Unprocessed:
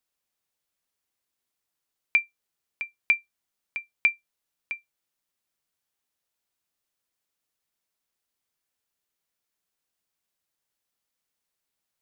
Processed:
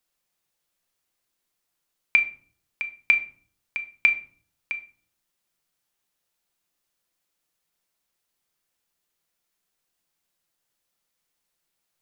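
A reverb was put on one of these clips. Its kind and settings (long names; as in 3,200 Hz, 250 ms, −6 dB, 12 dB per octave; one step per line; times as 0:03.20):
rectangular room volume 520 cubic metres, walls furnished, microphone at 0.85 metres
level +4 dB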